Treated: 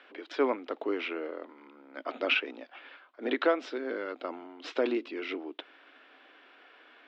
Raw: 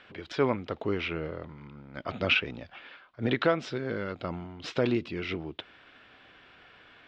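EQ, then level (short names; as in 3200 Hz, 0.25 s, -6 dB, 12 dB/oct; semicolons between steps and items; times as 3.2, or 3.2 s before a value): elliptic high-pass 270 Hz, stop band 50 dB; high shelf 5500 Hz -9 dB; 0.0 dB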